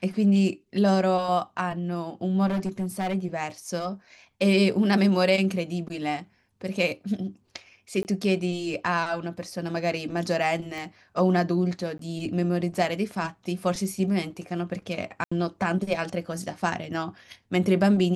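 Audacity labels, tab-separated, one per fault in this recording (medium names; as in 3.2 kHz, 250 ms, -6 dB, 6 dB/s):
2.460000	3.150000	clipped -23.5 dBFS
8.030000	8.050000	dropout 19 ms
10.780000	10.780000	pop
11.980000	11.990000	dropout 13 ms
15.240000	15.310000	dropout 75 ms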